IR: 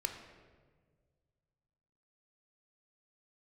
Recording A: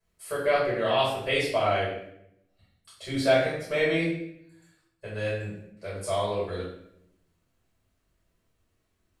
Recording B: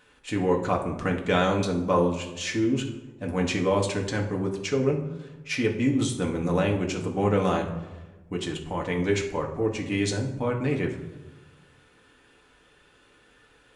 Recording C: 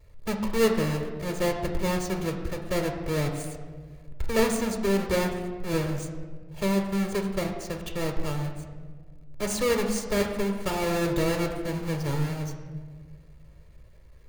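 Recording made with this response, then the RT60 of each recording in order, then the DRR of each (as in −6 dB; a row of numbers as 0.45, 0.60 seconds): C; 0.75, 1.1, 1.6 seconds; −8.5, 0.0, 4.5 decibels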